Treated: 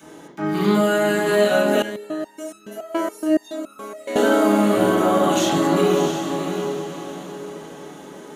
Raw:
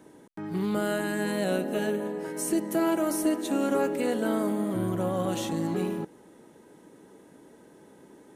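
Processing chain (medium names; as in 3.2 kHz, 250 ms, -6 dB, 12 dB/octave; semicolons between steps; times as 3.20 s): tilt EQ +3 dB/octave; peak limiter -23 dBFS, peak gain reduction 10 dB; echo that smears into a reverb 662 ms, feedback 40%, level -6 dB; reverberation RT60 0.60 s, pre-delay 3 ms, DRR -10 dB; 1.82–4.16 s: resonator arpeggio 7.1 Hz 110–1300 Hz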